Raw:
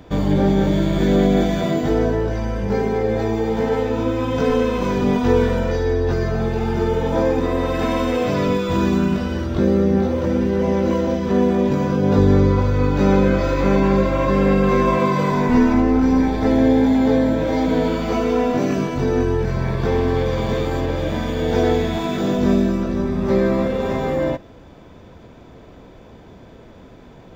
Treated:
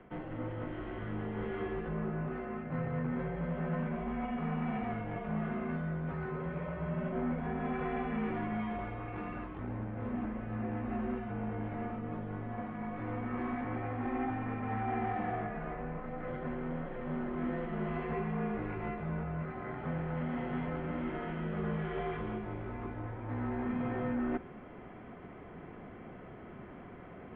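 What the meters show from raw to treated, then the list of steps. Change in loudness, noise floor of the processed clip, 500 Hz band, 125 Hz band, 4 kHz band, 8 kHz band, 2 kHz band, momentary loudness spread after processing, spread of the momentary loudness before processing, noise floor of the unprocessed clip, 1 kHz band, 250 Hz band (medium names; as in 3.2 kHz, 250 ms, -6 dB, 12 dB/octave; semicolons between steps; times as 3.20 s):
-18.5 dB, -49 dBFS, -21.5 dB, -16.5 dB, under -25 dB, no reading, -14.5 dB, 7 LU, 6 LU, -43 dBFS, -14.5 dB, -18.5 dB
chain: reverse; compression 6:1, threshold -28 dBFS, peak gain reduction 17.5 dB; reverse; hard clipper -26.5 dBFS, distortion -15 dB; mistuned SSB -280 Hz 420–2700 Hz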